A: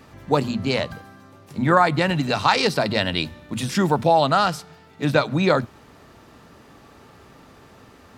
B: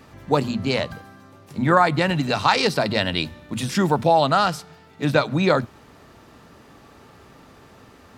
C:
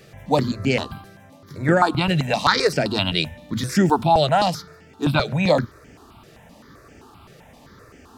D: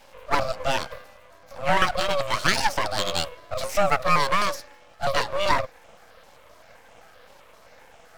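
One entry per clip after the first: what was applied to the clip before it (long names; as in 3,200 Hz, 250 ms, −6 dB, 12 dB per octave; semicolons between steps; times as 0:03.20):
no processing that can be heard
step-sequenced phaser 7.7 Hz 260–3,900 Hz; level +4 dB
frequency shifter +410 Hz; half-wave rectification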